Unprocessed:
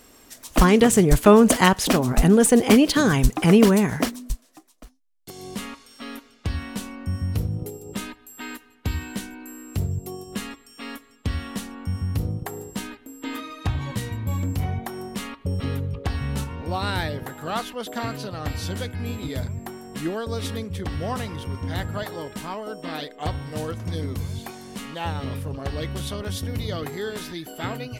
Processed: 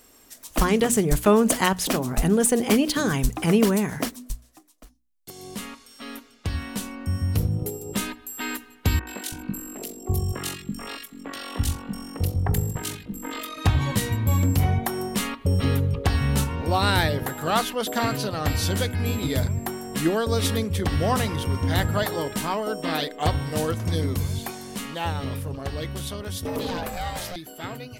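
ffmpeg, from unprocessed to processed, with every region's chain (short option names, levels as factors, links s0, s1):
-filter_complex "[0:a]asettb=1/sr,asplit=3[s0][s1][s2];[s0]atrim=end=8.994[s3];[s1]atrim=start=8.99:end=13.58,asetpts=PTS-STARTPTS,afade=t=in:d=0.004:c=qsin,afade=t=out:st=4.586:d=0.004:c=qsin,tremolo=f=46:d=0.71,acrossover=split=290|2000[s4][s5][s6];[s6]adelay=80[s7];[s4]adelay=330[s8];[s8][s5][s7]amix=inputs=3:normalize=0,atrim=end_sample=202419[s9];[s2]atrim=start=13.576[s10];[s3][s9]acrossfade=d=0.004:c1=hsin:c2=qsin[s11];[s11][s10]acrossfade=d=0.004:c1=qsin:c2=hsin,asettb=1/sr,asplit=3[s12][s13][s14];[s12]atrim=end=26.454[s15];[s13]atrim=start=26.45:end=27.36,asetpts=PTS-STARTPTS,afade=t=in:d=0.004:c=qsin,afade=t=out:st=0.906:d=0.004:c=qsin,aeval=exprs='val(0)*sin(2*PI*360*n/s)':c=same,aeval=exprs='0.112*sin(PI/2*1.78*val(0)/0.112)':c=same[s16];[s14]atrim=start=27.356[s17];[s15][s16]acrossfade=d=0.004:c1=hsin:c2=qsin[s18];[s18][s17]acrossfade=d=0.004:c1=qsin:c2=hsin,highshelf=f=8000:g=6.5,bandreject=f=60:t=h:w=6,bandreject=f=120:t=h:w=6,bandreject=f=180:t=h:w=6,bandreject=f=240:t=h:w=6,bandreject=f=300:t=h:w=6,dynaudnorm=f=350:g=21:m=3.76,volume=0.596"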